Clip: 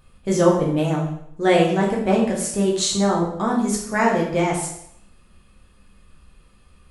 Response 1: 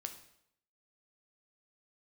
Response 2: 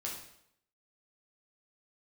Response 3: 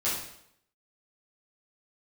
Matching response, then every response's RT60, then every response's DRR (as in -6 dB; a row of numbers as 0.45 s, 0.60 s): 2; 0.75 s, 0.75 s, 0.75 s; 5.5 dB, -3.5 dB, -10.5 dB